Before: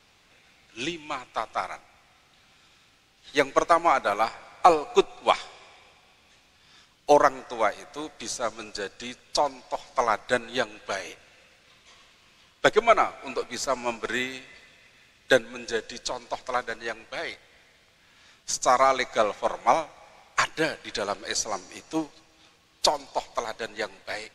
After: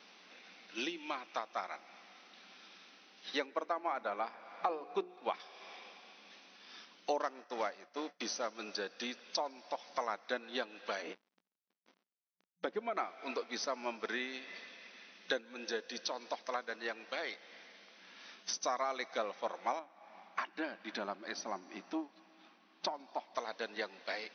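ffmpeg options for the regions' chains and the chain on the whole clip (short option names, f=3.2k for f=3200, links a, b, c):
-filter_complex "[0:a]asettb=1/sr,asplit=3[a][b][c];[a]atrim=end=3.464[d];[b]atrim=start=3.46:end=5.4,asetpts=PTS-STARTPTS,afade=t=in:d=0.004:c=qsin,afade=t=out:st=1.936:d=0.004:c=qsin,aemphasis=mode=reproduction:type=75kf,bandreject=f=60:t=h:w=6,bandreject=f=120:t=h:w=6,bandreject=f=180:t=h:w=6,bandreject=f=240:t=h:w=6,bandreject=f=300:t=h:w=6,bandreject=f=360:t=h:w=6,bandreject=f=420:t=h:w=6[e];[c]atrim=start=5.396[f];[d][e]acrossfade=d=0.004:c1=hsin:c2=qsin[g];[g][f]acrossfade=d=0.004:c1=qsin:c2=hsin,asettb=1/sr,asplit=3[h][i][j];[h]atrim=end=7.204[k];[i]atrim=start=7.2:end=8.55,asetpts=PTS-STARTPTS,afade=t=in:d=0.004:c=qsin,afade=t=out:st=1.346:d=0.004:c=qsin,agate=range=-33dB:threshold=-40dB:ratio=3:release=100:detection=peak,bandreject=f=3.7k:w=12,acrusher=bits=3:mode=log:mix=0:aa=0.000001[l];[j]atrim=start=8.546[m];[k][l]acrossfade=d=0.004:c1=hsin:c2=qsin[n];[n][m]acrossfade=d=0.004:c1=qsin:c2=hsin,asettb=1/sr,asplit=3[o][p][q];[o]atrim=end=11.024[r];[p]atrim=start=11.02:end=12.97,asetpts=PTS-STARTPTS,afade=t=in:d=0.004:c=qsin,afade=t=out:st=1.946:d=0.004:c=qsin,acrusher=bits=6:mix=0:aa=0.5,aemphasis=mode=reproduction:type=riaa,acompressor=threshold=-28dB:ratio=2:attack=3.2:release=140:knee=1:detection=peak[s];[q]atrim=start=12.966[t];[r][s]acrossfade=d=0.004:c1=hsin:c2=qsin[u];[u][t]acrossfade=d=0.004:c1=qsin:c2=hsin,asettb=1/sr,asplit=3[v][w][x];[v]atrim=end=19.794[y];[w]atrim=start=19.79:end=23.35,asetpts=PTS-STARTPTS,afade=t=in:d=0.004:c=qsin,afade=t=out:st=3.556:d=0.004:c=qsin,lowpass=f=1.1k:p=1,equalizer=f=480:t=o:w=0.33:g=-13.5[z];[x]atrim=start=23.346[aa];[y][z]acrossfade=d=0.004:c1=hsin:c2=qsin[ab];[ab][aa]acrossfade=d=0.004:c1=qsin:c2=hsin,afftfilt=real='re*between(b*sr/4096,180,6200)':imag='im*between(b*sr/4096,180,6200)':win_size=4096:overlap=0.75,acompressor=threshold=-40dB:ratio=3,volume=1.5dB"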